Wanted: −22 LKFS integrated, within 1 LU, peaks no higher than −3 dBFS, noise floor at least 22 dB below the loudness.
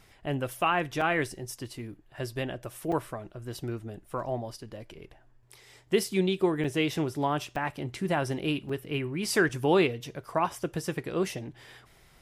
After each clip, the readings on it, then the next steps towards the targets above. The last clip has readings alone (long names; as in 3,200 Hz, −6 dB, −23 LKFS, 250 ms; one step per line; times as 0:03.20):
number of dropouts 6; longest dropout 4.4 ms; integrated loudness −30.0 LKFS; sample peak −11.5 dBFS; target loudness −22.0 LKFS
→ repair the gap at 0:01.01/0:02.92/0:06.64/0:07.56/0:08.69/0:09.49, 4.4 ms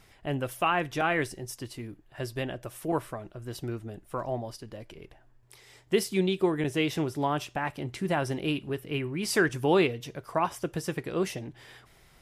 number of dropouts 0; integrated loudness −30.0 LKFS; sample peak −11.5 dBFS; target loudness −22.0 LKFS
→ level +8 dB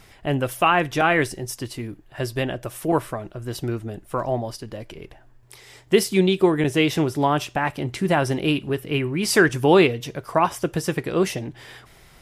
integrated loudness −22.0 LKFS; sample peak −3.5 dBFS; background noise floor −51 dBFS